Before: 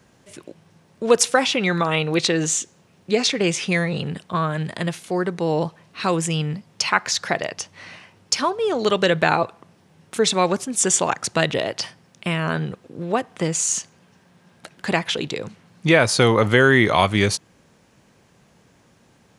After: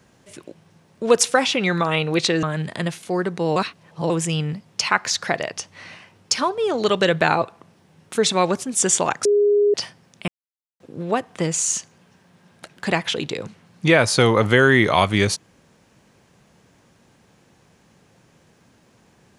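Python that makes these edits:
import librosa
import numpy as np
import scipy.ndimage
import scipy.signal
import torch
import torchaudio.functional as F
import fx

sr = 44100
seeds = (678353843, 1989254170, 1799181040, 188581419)

y = fx.edit(x, sr, fx.cut(start_s=2.43, length_s=2.01),
    fx.reverse_span(start_s=5.57, length_s=0.54),
    fx.bleep(start_s=11.26, length_s=0.49, hz=411.0, db=-13.0),
    fx.silence(start_s=12.29, length_s=0.52), tone=tone)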